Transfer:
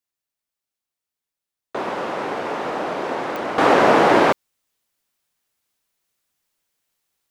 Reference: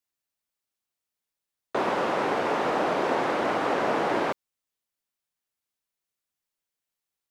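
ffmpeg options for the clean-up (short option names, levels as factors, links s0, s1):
-af "adeclick=t=4,asetnsamples=n=441:p=0,asendcmd='3.58 volume volume -11.5dB',volume=1"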